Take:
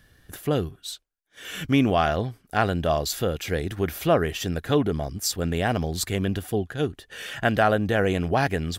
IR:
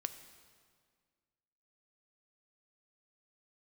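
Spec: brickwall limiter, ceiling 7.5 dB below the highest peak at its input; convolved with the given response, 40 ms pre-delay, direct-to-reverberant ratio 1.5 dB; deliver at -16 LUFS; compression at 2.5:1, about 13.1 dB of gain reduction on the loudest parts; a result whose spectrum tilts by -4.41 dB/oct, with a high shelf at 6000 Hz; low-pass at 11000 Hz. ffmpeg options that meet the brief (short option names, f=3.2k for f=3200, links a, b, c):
-filter_complex "[0:a]lowpass=11k,highshelf=f=6k:g=3.5,acompressor=threshold=-36dB:ratio=2.5,alimiter=level_in=2.5dB:limit=-24dB:level=0:latency=1,volume=-2.5dB,asplit=2[a][b];[1:a]atrim=start_sample=2205,adelay=40[c];[b][c]afir=irnorm=-1:irlink=0,volume=-0.5dB[d];[a][d]amix=inputs=2:normalize=0,volume=19.5dB"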